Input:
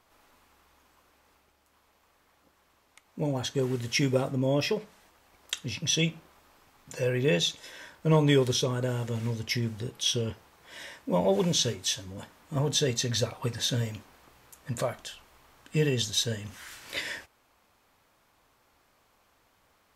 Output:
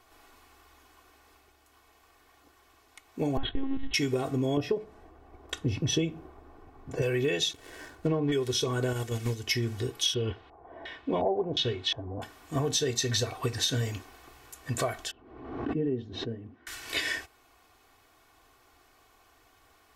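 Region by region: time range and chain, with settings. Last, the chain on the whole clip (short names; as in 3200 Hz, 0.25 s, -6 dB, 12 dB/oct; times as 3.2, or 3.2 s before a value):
3.37–3.94 low shelf 190 Hz +9 dB + monotone LPC vocoder at 8 kHz 270 Hz + mismatched tape noise reduction decoder only
4.57–7.02 tilt shelf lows +9 dB, about 1200 Hz + mismatched tape noise reduction decoder only
7.53–8.32 switching dead time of 0.12 ms + treble ducked by the level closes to 2200 Hz, closed at -17.5 dBFS + tilt shelf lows +5 dB, about 910 Hz
8.93–9.47 gate -31 dBFS, range -7 dB + high shelf 4800 Hz +7 dB
10.14–12.22 high shelf 2500 Hz -11.5 dB + LFO low-pass square 1.4 Hz 770–3500 Hz
15.11–16.67 band-pass 250 Hz, Q 1.6 + air absorption 210 m + backwards sustainer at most 56 dB/s
whole clip: comb 2.7 ms, depth 66%; compressor 12:1, threshold -27 dBFS; gain +3 dB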